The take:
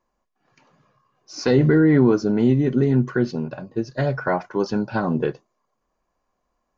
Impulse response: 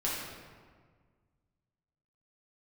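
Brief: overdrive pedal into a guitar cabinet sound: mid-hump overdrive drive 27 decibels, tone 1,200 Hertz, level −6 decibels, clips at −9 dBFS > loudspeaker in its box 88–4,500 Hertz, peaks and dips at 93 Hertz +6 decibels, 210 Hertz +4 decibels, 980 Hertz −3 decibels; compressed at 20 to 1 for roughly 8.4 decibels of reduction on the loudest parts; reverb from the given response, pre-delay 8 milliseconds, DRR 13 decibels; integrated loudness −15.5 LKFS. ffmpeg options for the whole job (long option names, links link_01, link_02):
-filter_complex "[0:a]acompressor=threshold=-20dB:ratio=20,asplit=2[link_01][link_02];[1:a]atrim=start_sample=2205,adelay=8[link_03];[link_02][link_03]afir=irnorm=-1:irlink=0,volume=-19.5dB[link_04];[link_01][link_04]amix=inputs=2:normalize=0,asplit=2[link_05][link_06];[link_06]highpass=frequency=720:poles=1,volume=27dB,asoftclip=type=tanh:threshold=-9dB[link_07];[link_05][link_07]amix=inputs=2:normalize=0,lowpass=frequency=1200:poles=1,volume=-6dB,highpass=88,equalizer=frequency=93:width_type=q:width=4:gain=6,equalizer=frequency=210:width_type=q:width=4:gain=4,equalizer=frequency=980:width_type=q:width=4:gain=-3,lowpass=frequency=4500:width=0.5412,lowpass=frequency=4500:width=1.3066,volume=3.5dB"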